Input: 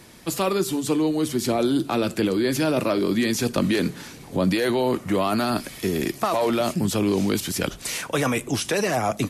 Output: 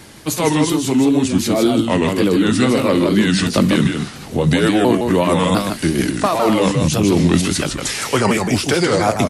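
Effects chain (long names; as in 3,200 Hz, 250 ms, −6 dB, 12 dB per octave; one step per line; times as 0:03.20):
pitch shifter swept by a sawtooth −4.5 semitones, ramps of 693 ms
single-tap delay 158 ms −5 dB
tape wow and flutter 100 cents
level +7.5 dB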